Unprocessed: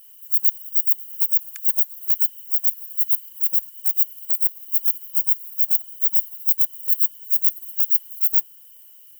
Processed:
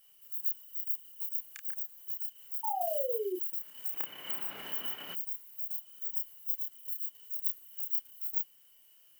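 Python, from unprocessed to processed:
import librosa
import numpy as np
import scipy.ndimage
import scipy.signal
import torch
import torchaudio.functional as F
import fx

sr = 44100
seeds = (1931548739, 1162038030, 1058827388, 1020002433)

y = fx.lowpass(x, sr, hz=3300.0, slope=6)
y = fx.level_steps(y, sr, step_db=9)
y = fx.spec_paint(y, sr, seeds[0], shape='fall', start_s=2.63, length_s=0.73, low_hz=350.0, high_hz=910.0, level_db=-35.0)
y = fx.doubler(y, sr, ms=30.0, db=-3.5)
y = fx.band_squash(y, sr, depth_pct=100, at=(2.81, 5.15))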